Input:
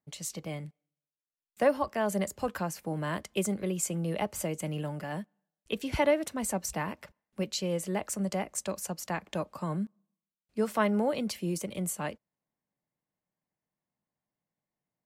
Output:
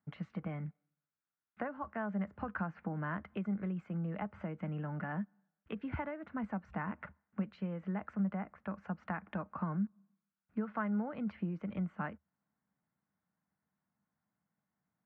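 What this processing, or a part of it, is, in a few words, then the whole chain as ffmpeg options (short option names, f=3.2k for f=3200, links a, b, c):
bass amplifier: -filter_complex "[0:a]acompressor=threshold=-39dB:ratio=5,highpass=75,equalizer=f=77:t=q:w=4:g=8,equalizer=f=200:t=q:w=4:g=6,equalizer=f=380:t=q:w=4:g=-7,equalizer=f=550:t=q:w=4:g=-7,equalizer=f=1.4k:t=q:w=4:g=8,lowpass=f=2k:w=0.5412,lowpass=f=2k:w=1.3066,asettb=1/sr,asplit=3[a][b][c];[a]atrim=end=8.294[d];[b]atrim=start=8.29:end=8.78,asetpts=PTS-STARTPTS,afade=t=in:d=0.004:c=qsin,afade=t=out:st=0.486:d=0.004:c=qsin,lowpass=2.9k[e];[c]atrim=start=8.776[f];[d][e]acrossfade=d=0.004:c1=hsin:c2=qsin[g];[g][f]acrossfade=d=0.004:c1=qsin:c2=hsin,volume=3dB"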